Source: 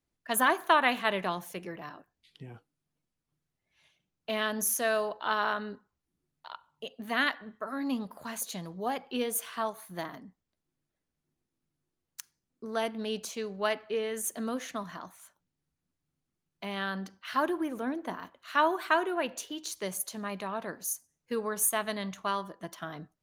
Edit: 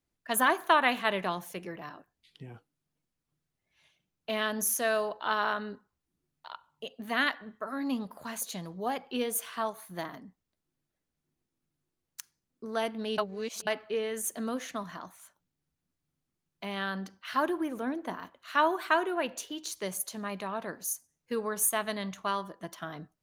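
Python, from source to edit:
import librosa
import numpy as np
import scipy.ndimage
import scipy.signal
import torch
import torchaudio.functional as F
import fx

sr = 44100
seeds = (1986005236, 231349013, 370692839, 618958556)

y = fx.edit(x, sr, fx.reverse_span(start_s=13.18, length_s=0.49), tone=tone)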